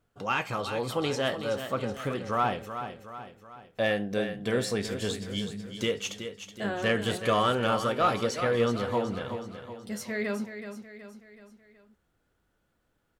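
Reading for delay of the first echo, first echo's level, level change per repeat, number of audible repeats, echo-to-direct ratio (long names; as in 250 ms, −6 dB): 374 ms, −9.5 dB, −6.0 dB, 4, −8.5 dB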